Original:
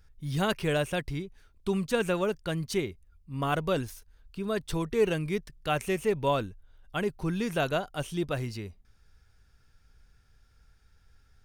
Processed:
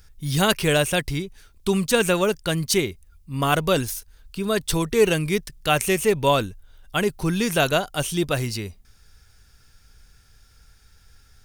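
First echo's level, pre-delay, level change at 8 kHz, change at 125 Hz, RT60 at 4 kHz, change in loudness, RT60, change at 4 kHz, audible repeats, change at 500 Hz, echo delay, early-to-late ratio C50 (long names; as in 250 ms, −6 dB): no echo audible, no reverb audible, +16.0 dB, +7.0 dB, no reverb audible, +8.0 dB, no reverb audible, +12.0 dB, no echo audible, +7.0 dB, no echo audible, no reverb audible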